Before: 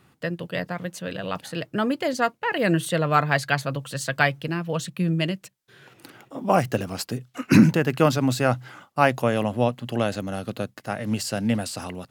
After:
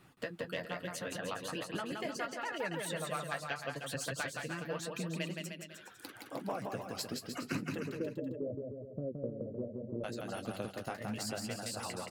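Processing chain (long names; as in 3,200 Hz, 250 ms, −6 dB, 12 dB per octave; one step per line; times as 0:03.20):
phase distortion by the signal itself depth 0.054 ms
0:07.78–0:10.04: Butterworth low-pass 600 Hz 96 dB per octave
reverb reduction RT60 1.4 s
harmonic and percussive parts rebalanced percussive +7 dB
downward compressor 6 to 1, threshold −30 dBFS, peak gain reduction 22.5 dB
flanger 0.78 Hz, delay 5.7 ms, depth 7.6 ms, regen −44%
bouncing-ball delay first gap 170 ms, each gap 0.8×, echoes 5
level −3.5 dB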